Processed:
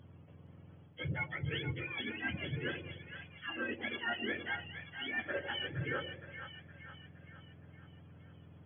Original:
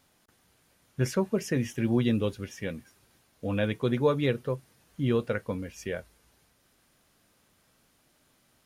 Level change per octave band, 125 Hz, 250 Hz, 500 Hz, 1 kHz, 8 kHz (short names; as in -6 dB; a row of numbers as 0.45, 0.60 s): -10.5 dB, -15.0 dB, -15.0 dB, -5.5 dB, under -35 dB